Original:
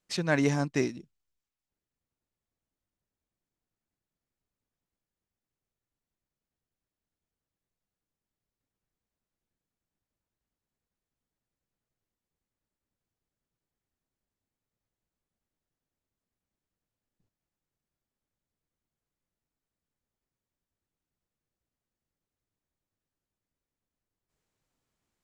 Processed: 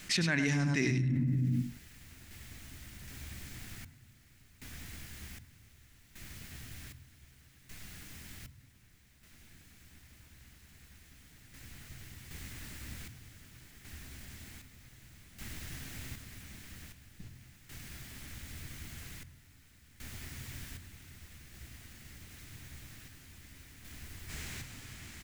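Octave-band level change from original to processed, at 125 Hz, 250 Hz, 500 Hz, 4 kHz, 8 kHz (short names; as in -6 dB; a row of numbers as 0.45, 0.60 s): +5.5, -0.5, -9.0, +5.0, +5.0 dB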